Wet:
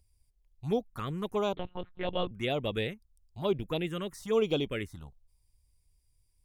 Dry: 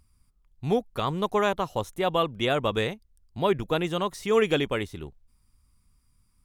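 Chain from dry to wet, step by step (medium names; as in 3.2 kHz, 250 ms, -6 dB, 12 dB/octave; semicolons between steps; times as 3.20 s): touch-sensitive phaser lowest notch 210 Hz, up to 1.8 kHz, full sweep at -19.5 dBFS; 1.55–2.31 s: monotone LPC vocoder at 8 kHz 180 Hz; trim -4 dB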